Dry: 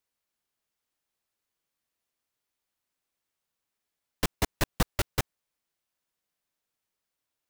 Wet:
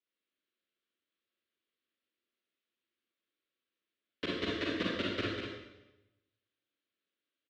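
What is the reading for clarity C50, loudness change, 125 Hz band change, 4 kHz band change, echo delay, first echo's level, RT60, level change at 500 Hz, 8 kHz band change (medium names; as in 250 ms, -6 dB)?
-3.0 dB, -4.0 dB, -10.5 dB, -1.0 dB, 197 ms, -5.5 dB, 0.95 s, -0.5 dB, -22.0 dB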